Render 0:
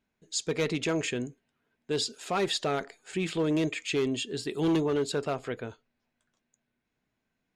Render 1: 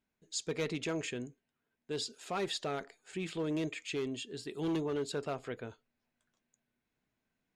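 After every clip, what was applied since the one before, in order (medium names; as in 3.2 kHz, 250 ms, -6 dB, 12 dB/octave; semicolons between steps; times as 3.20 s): gain riding 2 s; trim -8 dB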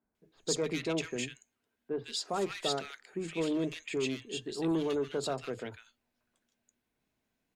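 Chebyshev shaper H 6 -37 dB, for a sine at -25 dBFS; three bands offset in time mids, lows, highs 30/150 ms, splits 150/1600 Hz; trim +3.5 dB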